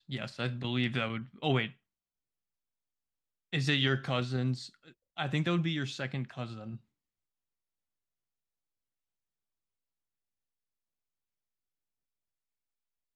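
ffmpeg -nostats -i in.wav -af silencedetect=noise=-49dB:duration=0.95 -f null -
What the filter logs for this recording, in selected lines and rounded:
silence_start: 1.72
silence_end: 3.53 | silence_duration: 1.80
silence_start: 6.77
silence_end: 13.16 | silence_duration: 6.39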